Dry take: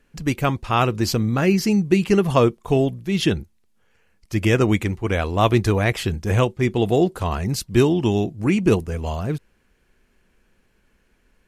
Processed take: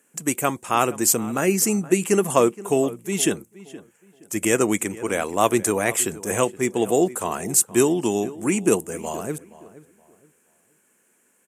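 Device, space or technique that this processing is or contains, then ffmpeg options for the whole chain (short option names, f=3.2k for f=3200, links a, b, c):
budget condenser microphone: -filter_complex "[0:a]highpass=84,highpass=250,highshelf=f=6k:t=q:w=3:g=11,asplit=2[a][b];[b]adelay=471,lowpass=f=2.4k:p=1,volume=-17.5dB,asplit=2[c][d];[d]adelay=471,lowpass=f=2.4k:p=1,volume=0.29,asplit=2[e][f];[f]adelay=471,lowpass=f=2.4k:p=1,volume=0.29[g];[a][c][e][g]amix=inputs=4:normalize=0"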